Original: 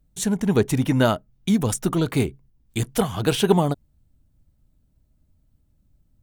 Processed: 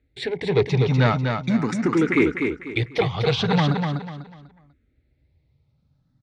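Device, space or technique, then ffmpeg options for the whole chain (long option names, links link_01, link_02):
barber-pole phaser into a guitar amplifier: -filter_complex "[0:a]asettb=1/sr,asplit=3[link_01][link_02][link_03];[link_01]atrim=end=1.624[link_04];[link_02]atrim=start=1.62:end=2.03,asetpts=PTS-STARTPTS,afade=type=in:duration=0.004:curve=qsin,afade=type=out:start_time=0.406:duration=0.004:curve=qsin,highpass=140[link_05];[link_03]atrim=start=2.026[link_06];[link_04][link_05]acrossfade=duration=0.004:curve1=hsin:curve2=qsin[link_07];[link_07][link_06]acrossfade=duration=0.004:curve1=qsin:curve2=hsin,asplit=2[link_08][link_09];[link_09]afreqshift=0.41[link_10];[link_08][link_10]amix=inputs=2:normalize=1,asoftclip=type=tanh:threshold=-17dB,highpass=90,equalizer=frequency=100:width_type=q:width=4:gain=-6,equalizer=frequency=200:width_type=q:width=4:gain=-8,equalizer=frequency=650:width_type=q:width=4:gain=-9,equalizer=frequency=1000:width_type=q:width=4:gain=-6,equalizer=frequency=2100:width_type=q:width=4:gain=9,equalizer=frequency=3000:width_type=q:width=4:gain=-9,lowpass=frequency=4000:width=0.5412,lowpass=frequency=4000:width=1.3066,highshelf=frequency=5700:gain=6,aecho=1:1:247|494|741|988:0.562|0.174|0.054|0.0168,volume=7.5dB"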